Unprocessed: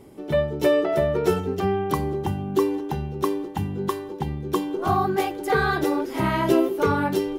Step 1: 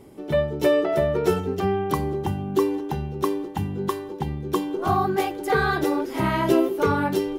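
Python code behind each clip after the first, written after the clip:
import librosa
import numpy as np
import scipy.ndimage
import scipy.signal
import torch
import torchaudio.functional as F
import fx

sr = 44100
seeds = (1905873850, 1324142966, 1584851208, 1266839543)

y = x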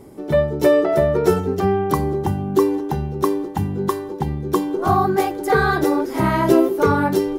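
y = fx.peak_eq(x, sr, hz=2900.0, db=-7.0, octaves=0.77)
y = y * 10.0 ** (5.0 / 20.0)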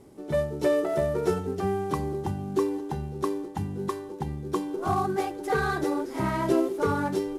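y = fx.cvsd(x, sr, bps=64000)
y = y * 10.0 ** (-9.0 / 20.0)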